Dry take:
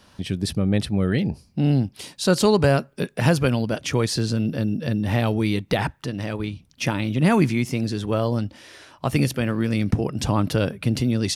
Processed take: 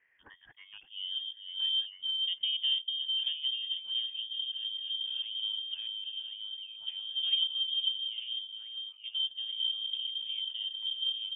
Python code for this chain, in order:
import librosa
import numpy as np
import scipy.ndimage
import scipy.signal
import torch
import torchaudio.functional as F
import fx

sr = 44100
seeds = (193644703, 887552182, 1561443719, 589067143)

p1 = scipy.signal.sosfilt(scipy.signal.butter(2, 88.0, 'highpass', fs=sr, output='sos'), x)
p2 = fx.level_steps(p1, sr, step_db=17)
p3 = p1 + F.gain(torch.from_numpy(p2), 0.0).numpy()
p4 = fx.filter_sweep_bandpass(p3, sr, from_hz=1500.0, to_hz=270.0, start_s=0.6, end_s=1.13, q=7.3)
p5 = fx.echo_stepped(p4, sr, ms=446, hz=250.0, octaves=1.4, feedback_pct=70, wet_db=-1.5)
p6 = fx.freq_invert(p5, sr, carrier_hz=3400)
y = F.gain(torch.from_numpy(p6), -6.0).numpy()